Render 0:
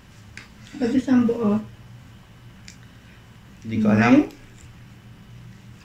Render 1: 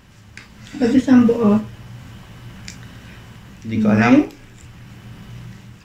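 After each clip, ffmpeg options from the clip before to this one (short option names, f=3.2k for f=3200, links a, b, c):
-af "dynaudnorm=f=230:g=5:m=8dB"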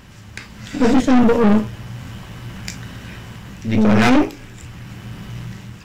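-af "aeval=exprs='(tanh(8.91*val(0)+0.65)-tanh(0.65))/8.91':c=same,volume=8.5dB"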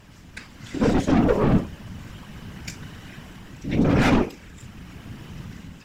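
-af "afftfilt=real='hypot(re,im)*cos(2*PI*random(0))':imag='hypot(re,im)*sin(2*PI*random(1))':win_size=512:overlap=0.75"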